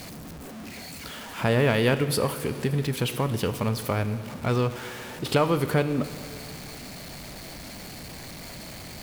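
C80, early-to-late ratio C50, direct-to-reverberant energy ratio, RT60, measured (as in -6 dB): 13.5 dB, 12.5 dB, 12.0 dB, 2.8 s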